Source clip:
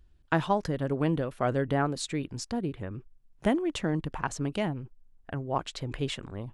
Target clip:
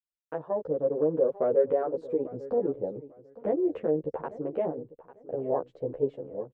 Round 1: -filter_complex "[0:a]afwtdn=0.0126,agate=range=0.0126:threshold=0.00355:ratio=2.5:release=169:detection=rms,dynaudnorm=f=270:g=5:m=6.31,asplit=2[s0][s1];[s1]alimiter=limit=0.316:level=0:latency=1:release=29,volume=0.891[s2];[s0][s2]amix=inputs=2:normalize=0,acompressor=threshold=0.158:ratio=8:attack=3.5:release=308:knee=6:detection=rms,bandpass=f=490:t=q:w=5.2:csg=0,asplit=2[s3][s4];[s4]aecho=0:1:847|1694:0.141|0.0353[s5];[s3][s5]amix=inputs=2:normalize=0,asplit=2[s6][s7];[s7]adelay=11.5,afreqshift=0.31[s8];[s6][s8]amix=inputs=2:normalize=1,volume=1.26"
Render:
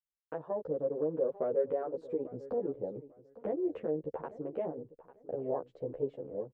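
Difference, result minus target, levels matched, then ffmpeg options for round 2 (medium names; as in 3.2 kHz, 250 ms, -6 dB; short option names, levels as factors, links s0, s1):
compression: peak gain reduction +7.5 dB
-filter_complex "[0:a]afwtdn=0.0126,agate=range=0.0126:threshold=0.00355:ratio=2.5:release=169:detection=rms,dynaudnorm=f=270:g=5:m=6.31,asplit=2[s0][s1];[s1]alimiter=limit=0.316:level=0:latency=1:release=29,volume=0.891[s2];[s0][s2]amix=inputs=2:normalize=0,acompressor=threshold=0.422:ratio=8:attack=3.5:release=308:knee=6:detection=rms,bandpass=f=490:t=q:w=5.2:csg=0,asplit=2[s3][s4];[s4]aecho=0:1:847|1694:0.141|0.0353[s5];[s3][s5]amix=inputs=2:normalize=0,asplit=2[s6][s7];[s7]adelay=11.5,afreqshift=0.31[s8];[s6][s8]amix=inputs=2:normalize=1,volume=1.26"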